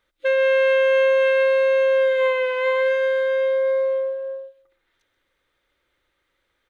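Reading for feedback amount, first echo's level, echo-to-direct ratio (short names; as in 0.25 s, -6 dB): 24%, -16.5 dB, -16.0 dB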